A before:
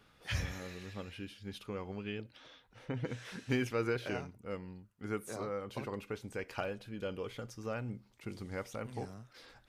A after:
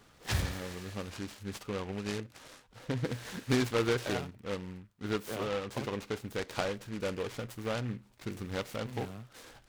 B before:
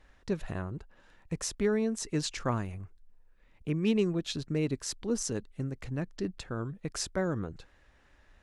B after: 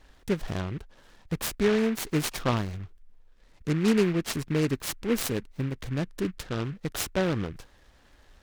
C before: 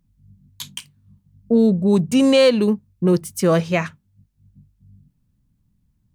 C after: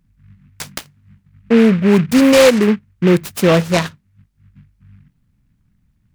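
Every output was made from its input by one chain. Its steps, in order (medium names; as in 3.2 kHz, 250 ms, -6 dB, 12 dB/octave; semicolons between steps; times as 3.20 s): delay time shaken by noise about 1.7 kHz, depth 0.082 ms; trim +4.5 dB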